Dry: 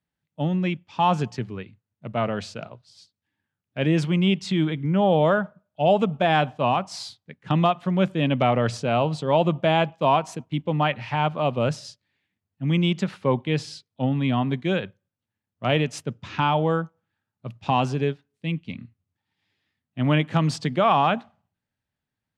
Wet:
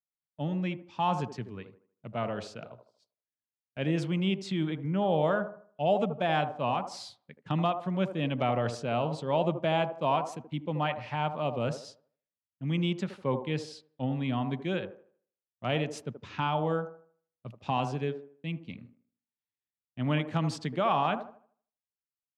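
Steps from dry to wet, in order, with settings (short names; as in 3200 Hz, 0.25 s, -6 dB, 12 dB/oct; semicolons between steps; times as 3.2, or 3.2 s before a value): gate -48 dBFS, range -20 dB; on a send: band-limited delay 78 ms, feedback 34%, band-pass 550 Hz, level -7 dB; on the sum: gain -8 dB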